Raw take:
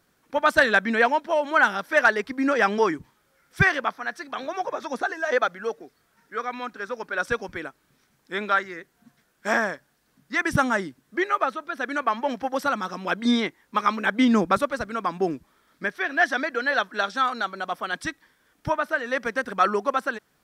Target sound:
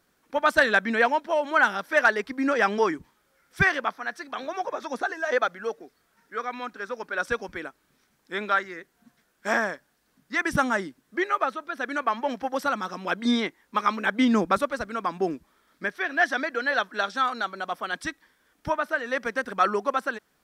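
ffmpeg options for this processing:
-af "equalizer=f=120:w=2.4:g=-7.5,volume=0.841"

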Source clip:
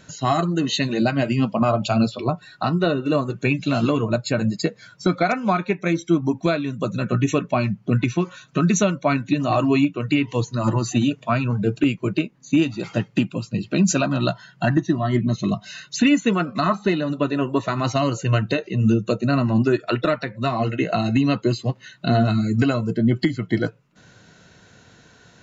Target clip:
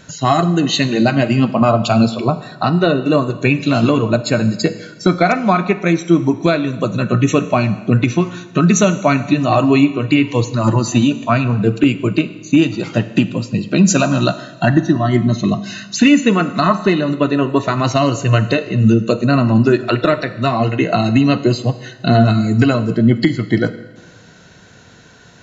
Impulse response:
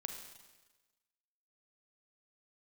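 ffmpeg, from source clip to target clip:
-filter_complex "[0:a]asplit=2[s0][s1];[1:a]atrim=start_sample=2205,asetrate=42777,aresample=44100[s2];[s1][s2]afir=irnorm=-1:irlink=0,volume=0.75[s3];[s0][s3]amix=inputs=2:normalize=0,volume=1.33"

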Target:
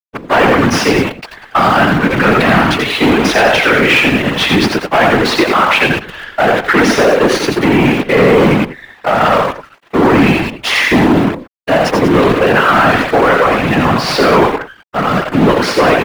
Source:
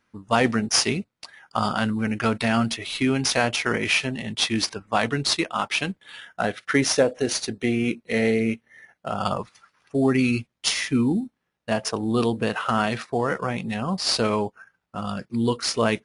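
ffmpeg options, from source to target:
-filter_complex "[0:a]bandreject=f=55.16:t=h:w=4,bandreject=f=110.32:t=h:w=4,asoftclip=type=hard:threshold=0.0841,asplit=2[s0][s1];[s1]aecho=0:1:85|103|191:0.562|0.282|0.251[s2];[s0][s2]amix=inputs=2:normalize=0,acrusher=bits=6:dc=4:mix=0:aa=0.000001,acrossover=split=230 3000:gain=0.2 1 0.112[s3][s4][s5];[s3][s4][s5]amix=inputs=3:normalize=0,afftfilt=real='hypot(re,im)*cos(2*PI*random(0))':imag='hypot(re,im)*sin(2*PI*random(1))':win_size=512:overlap=0.75,apsyclip=25.1,volume=0.708"

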